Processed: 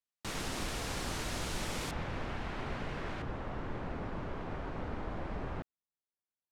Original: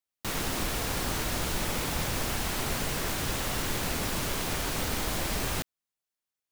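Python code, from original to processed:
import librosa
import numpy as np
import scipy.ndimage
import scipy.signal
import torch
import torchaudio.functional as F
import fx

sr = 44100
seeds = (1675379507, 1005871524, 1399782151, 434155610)

y = fx.lowpass(x, sr, hz=fx.steps((0.0, 9000.0), (1.91, 2200.0), (3.22, 1300.0)), slope=12)
y = F.gain(torch.from_numpy(y), -6.0).numpy()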